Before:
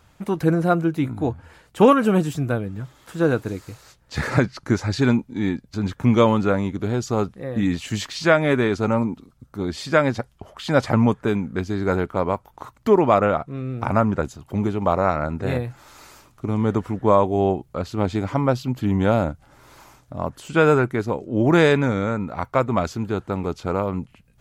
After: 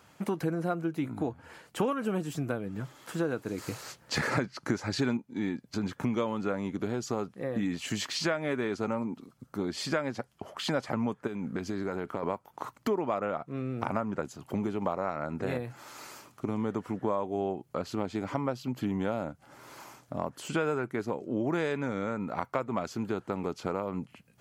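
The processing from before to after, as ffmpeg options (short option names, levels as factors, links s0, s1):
-filter_complex "[0:a]asettb=1/sr,asplit=3[s0][s1][s2];[s0]atrim=end=11.274[s3];[s1]atrim=start=11.27:end=12.23,asetpts=PTS-STARTPTS,afade=t=in:d=0.004:c=qsin,afade=t=out:st=0.956:d=0.004:c=qsin,acompressor=threshold=0.0562:ratio=12:attack=3.2:release=140:knee=1:detection=peak[s4];[s2]atrim=start=12.226[s5];[s3][s4]acrossfade=d=0.004:c1=hsin:c2=qsin[s6];[s6][s5]acrossfade=d=0.004:c1=qsin:c2=hsin,asplit=3[s7][s8][s9];[s7]atrim=end=3.582[s10];[s8]atrim=start=3.578:end=5.172,asetpts=PTS-STARTPTS,volume=2[s11];[s9]atrim=start=5.168[s12];[s10][s11]acrossfade=d=0.004:c1=hsin:c2=hsin[s13];[s13][s12]acrossfade=d=0.004:c1=hsin:c2=hsin,highpass=160,bandreject=f=3700:w=18,acompressor=threshold=0.0355:ratio=4"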